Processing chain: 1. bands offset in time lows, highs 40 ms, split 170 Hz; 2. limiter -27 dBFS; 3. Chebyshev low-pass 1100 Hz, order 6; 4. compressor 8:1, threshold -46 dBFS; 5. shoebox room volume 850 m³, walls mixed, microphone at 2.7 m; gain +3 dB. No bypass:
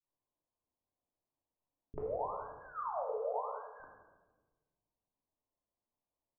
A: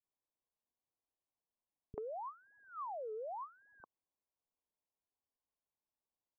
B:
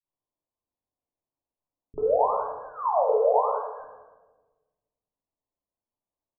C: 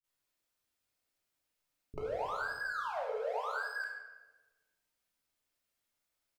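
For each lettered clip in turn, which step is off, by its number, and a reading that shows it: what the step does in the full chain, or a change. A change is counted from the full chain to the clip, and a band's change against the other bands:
5, momentary loudness spread change +5 LU; 4, mean gain reduction 10.5 dB; 3, momentary loudness spread change -5 LU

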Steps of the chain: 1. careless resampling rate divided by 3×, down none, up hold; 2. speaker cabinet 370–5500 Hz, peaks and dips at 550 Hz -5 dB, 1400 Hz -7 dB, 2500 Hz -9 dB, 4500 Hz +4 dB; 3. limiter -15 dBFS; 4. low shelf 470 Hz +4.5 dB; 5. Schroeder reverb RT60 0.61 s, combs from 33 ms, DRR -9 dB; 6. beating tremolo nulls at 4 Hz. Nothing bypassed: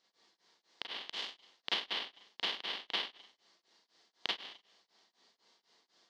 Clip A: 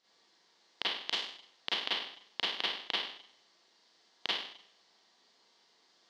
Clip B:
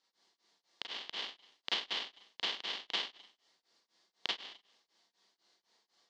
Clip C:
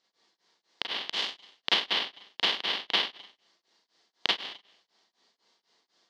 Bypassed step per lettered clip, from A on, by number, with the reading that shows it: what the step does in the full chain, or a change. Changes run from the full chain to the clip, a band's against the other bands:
6, momentary loudness spread change -1 LU; 1, 8 kHz band +4.0 dB; 3, mean gain reduction 9.0 dB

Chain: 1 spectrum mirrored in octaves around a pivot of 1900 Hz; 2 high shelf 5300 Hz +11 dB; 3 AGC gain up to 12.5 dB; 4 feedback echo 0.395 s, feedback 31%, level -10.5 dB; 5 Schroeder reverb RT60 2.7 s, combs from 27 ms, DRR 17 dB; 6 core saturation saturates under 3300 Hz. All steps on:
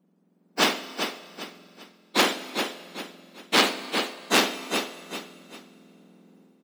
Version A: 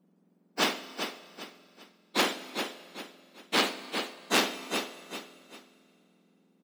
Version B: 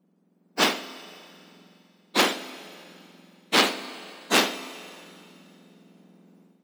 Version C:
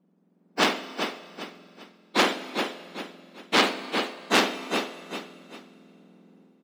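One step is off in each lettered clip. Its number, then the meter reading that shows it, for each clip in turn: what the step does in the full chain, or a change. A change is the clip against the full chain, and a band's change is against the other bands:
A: 3, loudness change -5.5 LU; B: 4, momentary loudness spread change +2 LU; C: 2, 8 kHz band -5.5 dB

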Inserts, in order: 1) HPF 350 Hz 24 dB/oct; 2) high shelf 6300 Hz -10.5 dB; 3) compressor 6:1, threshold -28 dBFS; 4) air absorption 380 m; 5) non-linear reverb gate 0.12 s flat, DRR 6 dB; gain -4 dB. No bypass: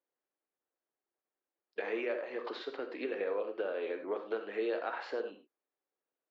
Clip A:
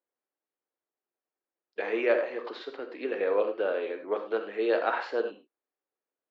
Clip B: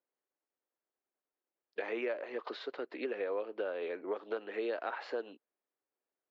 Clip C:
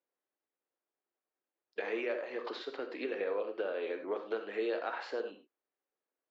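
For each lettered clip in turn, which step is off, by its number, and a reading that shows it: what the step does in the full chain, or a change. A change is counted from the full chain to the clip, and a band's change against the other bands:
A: 3, mean gain reduction 5.0 dB; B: 5, loudness change -1.0 LU; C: 2, 4 kHz band +1.5 dB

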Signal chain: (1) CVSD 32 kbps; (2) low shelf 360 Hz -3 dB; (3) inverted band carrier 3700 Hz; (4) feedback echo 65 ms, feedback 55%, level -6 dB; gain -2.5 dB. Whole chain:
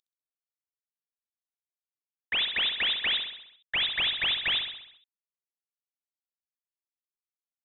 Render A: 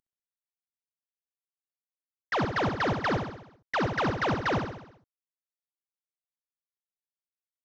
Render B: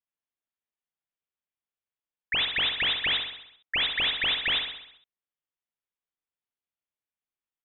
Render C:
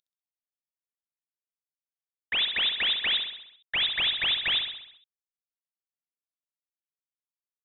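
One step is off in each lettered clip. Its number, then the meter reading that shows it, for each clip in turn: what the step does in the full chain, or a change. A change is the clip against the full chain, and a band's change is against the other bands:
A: 3, 4 kHz band -34.0 dB; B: 1, 4 kHz band -3.5 dB; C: 2, 4 kHz band +1.5 dB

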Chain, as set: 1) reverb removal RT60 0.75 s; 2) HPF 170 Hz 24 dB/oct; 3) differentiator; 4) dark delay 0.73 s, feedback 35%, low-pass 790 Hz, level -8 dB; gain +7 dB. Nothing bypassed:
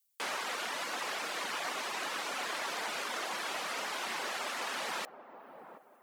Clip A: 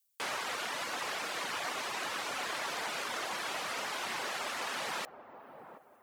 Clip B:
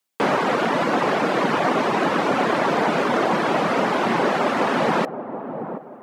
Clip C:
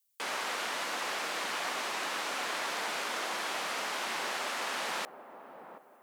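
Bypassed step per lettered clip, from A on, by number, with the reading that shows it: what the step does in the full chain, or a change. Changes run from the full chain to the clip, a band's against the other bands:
2, 125 Hz band +5.0 dB; 3, 8 kHz band -19.5 dB; 1, loudness change +2.0 LU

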